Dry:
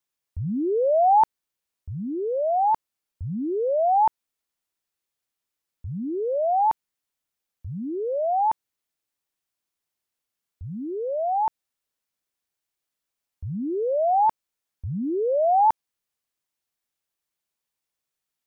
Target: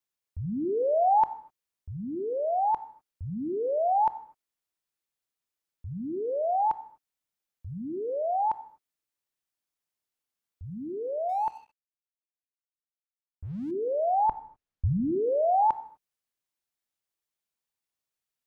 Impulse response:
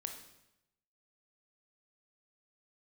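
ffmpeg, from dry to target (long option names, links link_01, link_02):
-filter_complex "[0:a]asettb=1/sr,asplit=3[link_01][link_02][link_03];[link_01]atrim=end=14.284[link_04];[link_02]atrim=start=14.28:end=15.63,asetpts=PTS-STARTPTS,afade=type=in:duration=0.004:curve=qsin,afade=type=out:start_time=1.346:duration=0.004:curve=qsin,aemphasis=mode=reproduction:type=bsi[link_05];[link_03]atrim=start=15.626[link_06];[link_04][link_05]acrossfade=duration=0.004:curve1=hsin:curve2=qsin[link_07];[link_07][link_06]acrossfade=duration=0.004:curve1=qsin:curve2=hsin,asplit=2[link_08][link_09];[1:a]atrim=start_sample=2205,afade=type=out:start_time=0.31:duration=0.01,atrim=end_sample=14112[link_10];[link_09][link_10]afir=irnorm=-1:irlink=0,volume=-2.5dB[link_11];[link_08][link_11]amix=inputs=2:normalize=0,asettb=1/sr,asplit=3[link_12][link_13][link_14];[link_12]atrim=end=11.294[link_15];[link_13]atrim=start=11.29:end=13.71,asetpts=PTS-STARTPTS,afade=type=in:duration=0.004:curve=qsin,afade=type=out:start_time=2.416:duration=0.004:curve=qsin,aeval=exprs='sgn(val(0))*max(abs(val(0))-0.00422,0)':channel_layout=same[link_16];[link_14]atrim=start=13.706[link_17];[link_15][link_16]acrossfade=duration=0.004:curve1=hsin:curve2=qsin[link_18];[link_18][link_17]acrossfade=duration=0.004:curve1=qsin:curve2=hsin,volume=-8.5dB"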